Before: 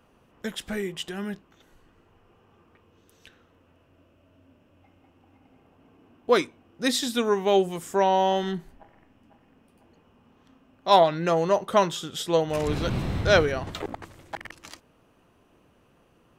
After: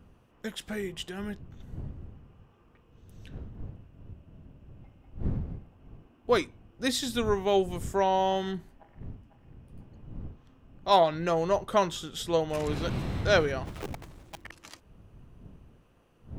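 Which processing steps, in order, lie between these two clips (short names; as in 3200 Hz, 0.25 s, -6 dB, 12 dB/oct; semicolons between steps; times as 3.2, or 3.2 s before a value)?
13.65–14.44 switching dead time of 0.3 ms; wind noise 120 Hz -39 dBFS; gain -4 dB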